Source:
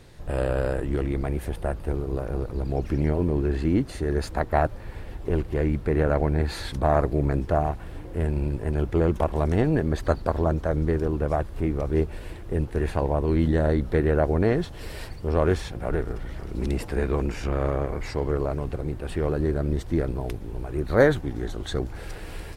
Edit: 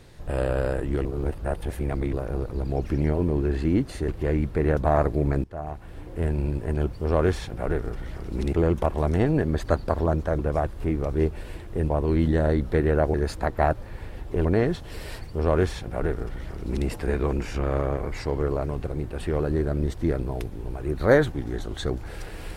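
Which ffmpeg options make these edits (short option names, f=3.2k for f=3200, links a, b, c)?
-filter_complex "[0:a]asplit=12[a][b][c][d][e][f][g][h][i][j][k][l];[a]atrim=end=1.052[m];[b]atrim=start=1.048:end=2.132,asetpts=PTS-STARTPTS,areverse[n];[c]atrim=start=2.128:end=4.082[o];[d]atrim=start=5.388:end=6.082[p];[e]atrim=start=6.748:end=7.42,asetpts=PTS-STARTPTS,afade=t=out:st=0.668:d=0.004:c=hsin:silence=0.0794328[q];[f]atrim=start=7.42:end=8.912,asetpts=PTS-STARTPTS,afade=t=in:d=0.74:silence=0.0794328[r];[g]atrim=start=15.158:end=16.762[s];[h]atrim=start=8.908:end=10.772[t];[i]atrim=start=11.148:end=12.662[u];[j]atrim=start=13.098:end=14.342[v];[k]atrim=start=4.078:end=5.392[w];[l]atrim=start=14.338[x];[m][n]acrossfade=d=0.004:c1=hsin:c2=hsin[y];[y][o]acrossfade=d=0.004:c1=hsin:c2=hsin[z];[z][p]acrossfade=d=0.004:c1=hsin:c2=hsin[aa];[q][r]concat=n=2:v=0:a=1[ab];[aa][ab]acrossfade=d=0.004:c1=hsin:c2=hsin[ac];[ac][s]acrossfade=d=0.004:c1=hsin:c2=hsin[ad];[ad][t]acrossfade=d=0.004:c1=hsin:c2=hsin[ae];[ae][u]acrossfade=d=0.004:c1=hsin:c2=hsin[af];[af][v]acrossfade=d=0.004:c1=hsin:c2=hsin[ag];[ag][w]acrossfade=d=0.004:c1=hsin:c2=hsin[ah];[ah][x]acrossfade=d=0.004:c1=hsin:c2=hsin"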